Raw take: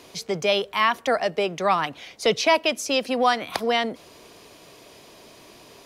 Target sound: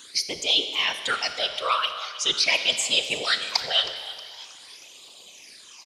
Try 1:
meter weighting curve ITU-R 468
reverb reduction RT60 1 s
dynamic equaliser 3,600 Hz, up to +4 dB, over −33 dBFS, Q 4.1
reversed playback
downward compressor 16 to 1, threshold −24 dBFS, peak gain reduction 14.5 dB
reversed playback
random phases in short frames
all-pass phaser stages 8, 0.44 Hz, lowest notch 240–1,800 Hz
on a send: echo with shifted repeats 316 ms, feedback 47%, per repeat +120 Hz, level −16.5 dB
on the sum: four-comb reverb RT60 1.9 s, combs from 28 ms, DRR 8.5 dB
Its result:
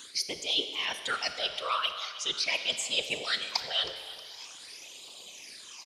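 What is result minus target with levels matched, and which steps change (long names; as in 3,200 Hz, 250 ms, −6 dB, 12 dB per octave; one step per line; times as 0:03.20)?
downward compressor: peak gain reduction +8.5 dB
change: downward compressor 16 to 1, threshold −15 dBFS, peak gain reduction 6.5 dB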